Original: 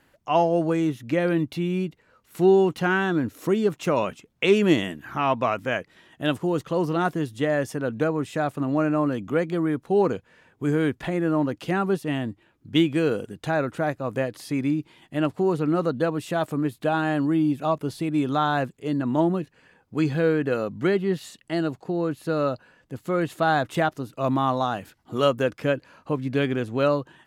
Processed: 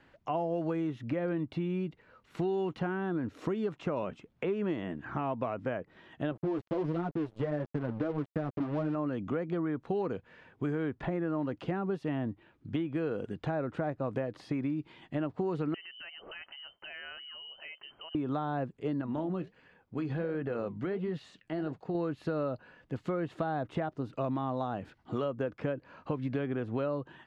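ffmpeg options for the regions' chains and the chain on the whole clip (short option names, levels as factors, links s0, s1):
-filter_complex "[0:a]asettb=1/sr,asplit=3[s0][s1][s2];[s0]atrim=end=6.314[s3];[s1]atrim=start=6.31:end=8.95,asetpts=PTS-STARTPTS,afade=t=in:d=0.004:c=qsin,afade=t=out:st=2.636:d=0.004:c=qsin,tiltshelf=f=930:g=6.5,flanger=delay=5.3:depth=5.3:regen=0:speed=1.5:shape=triangular,aeval=exprs='sgn(val(0))*max(abs(val(0))-0.015,0)':c=same[s4];[s2]atrim=start=8.946[s5];[s3][s4]acrossfade=d=0.004:c1=hsin:c2=qsin[s6];[s6][s5]acrossfade=d=0.004:c1=qsin:c2=hsin,asettb=1/sr,asplit=3[s7][s8][s9];[s7]atrim=end=15.744[s10];[s8]atrim=start=15.74:end=18.15,asetpts=PTS-STARTPTS,afade=t=in:d=0.004:c=qsin,afade=t=out:st=2.406:d=0.004:c=qsin,equalizer=f=760:w=4.7:g=-7,acompressor=threshold=0.0316:ratio=3:attack=3.2:release=140:knee=1:detection=peak,lowpass=f=2700:t=q:w=0.5098,lowpass=f=2700:t=q:w=0.6013,lowpass=f=2700:t=q:w=0.9,lowpass=f=2700:t=q:w=2.563,afreqshift=-3200[s11];[s9]atrim=start=18.146[s12];[s10][s11]acrossfade=d=0.004:c1=hsin:c2=qsin[s13];[s13][s12]acrossfade=d=0.004:c1=qsin:c2=hsin,asettb=1/sr,asplit=3[s14][s15][s16];[s14]atrim=end=19.014[s17];[s15]atrim=start=19.01:end=21.95,asetpts=PTS-STARTPTS,afade=t=in:d=0.004:c=qsin,afade=t=out:st=2.936:d=0.004:c=qsin,acompressor=threshold=0.0708:ratio=6:attack=3.2:release=140:knee=1:detection=peak,flanger=delay=1.4:depth=9.1:regen=-70:speed=1.4:shape=sinusoidal[s18];[s16]atrim=start=21.946[s19];[s17][s18]acrossfade=d=0.004:c1=hsin:c2=qsin[s20];[s20][s19]acrossfade=d=0.004:c1=qsin:c2=hsin,acompressor=threshold=0.0447:ratio=2.5,lowpass=3700,acrossover=split=750|1500[s21][s22][s23];[s21]acompressor=threshold=0.0316:ratio=4[s24];[s22]acompressor=threshold=0.00708:ratio=4[s25];[s23]acompressor=threshold=0.002:ratio=4[s26];[s24][s25][s26]amix=inputs=3:normalize=0"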